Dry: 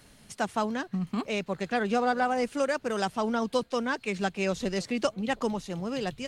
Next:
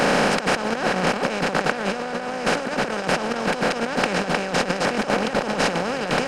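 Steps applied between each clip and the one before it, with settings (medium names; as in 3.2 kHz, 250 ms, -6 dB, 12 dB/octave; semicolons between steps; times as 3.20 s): spectral levelling over time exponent 0.2; compressor with a negative ratio -24 dBFS, ratio -0.5; trim +2 dB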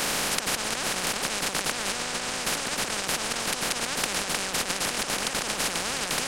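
spectrum-flattening compressor 4:1; trim -2.5 dB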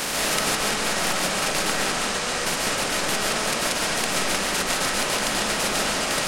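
algorithmic reverb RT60 1.5 s, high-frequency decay 0.4×, pre-delay 100 ms, DRR -4 dB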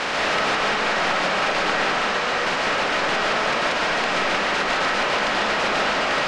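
overdrive pedal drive 15 dB, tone 2.4 kHz, clips at -6 dBFS; distance through air 130 m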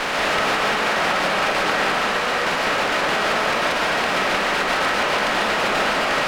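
sliding maximum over 3 samples; trim +1.5 dB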